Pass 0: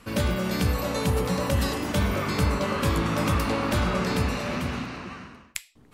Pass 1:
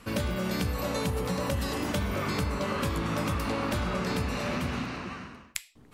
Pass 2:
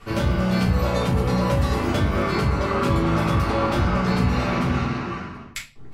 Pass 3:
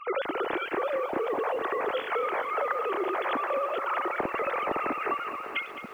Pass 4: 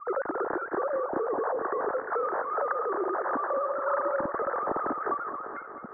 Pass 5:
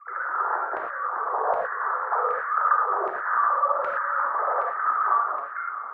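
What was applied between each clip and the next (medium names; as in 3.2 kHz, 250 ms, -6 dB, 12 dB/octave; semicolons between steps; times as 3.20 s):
compression, threshold -26 dBFS, peak gain reduction 8 dB
low-pass 3.8 kHz 6 dB/octave; simulated room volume 140 m³, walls furnished, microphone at 3.5 m
formants replaced by sine waves; compression 20:1, threshold -26 dBFS, peak gain reduction 15.5 dB; bit-crushed delay 213 ms, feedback 80%, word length 9-bit, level -12 dB
spectral replace 3.66–4.28 s, 350–800 Hz before; steep low-pass 1.7 kHz 72 dB/octave
bass shelf 190 Hz -10.5 dB; LFO high-pass saw down 1.3 Hz 620–2000 Hz; gated-style reverb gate 140 ms flat, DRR -1 dB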